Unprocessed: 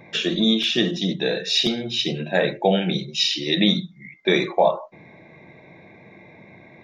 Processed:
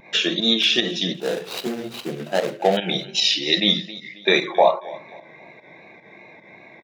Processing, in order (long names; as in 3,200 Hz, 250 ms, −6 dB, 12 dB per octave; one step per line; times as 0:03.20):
0:01.14–0:02.77: running median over 25 samples
high-pass filter 530 Hz 6 dB per octave
on a send: repeating echo 269 ms, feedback 37%, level −19 dB
on the sum: fake sidechain pumping 150 BPM, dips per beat 1, −10 dB, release 113 ms
pitch vibrato 2.6 Hz 47 cents
level +4.5 dB